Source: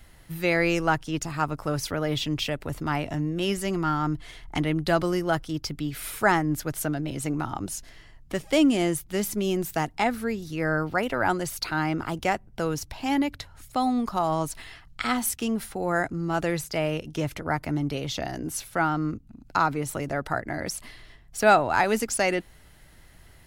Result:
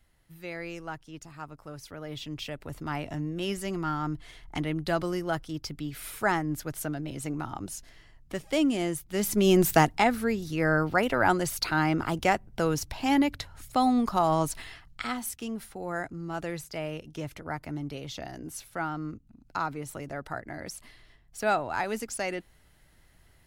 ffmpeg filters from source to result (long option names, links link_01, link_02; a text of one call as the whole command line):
ffmpeg -i in.wav -af "volume=8dB,afade=type=in:start_time=1.84:duration=1.27:silence=0.316228,afade=type=in:start_time=9.1:duration=0.61:silence=0.223872,afade=type=out:start_time=9.71:duration=0.33:silence=0.446684,afade=type=out:start_time=14.53:duration=0.63:silence=0.354813" out.wav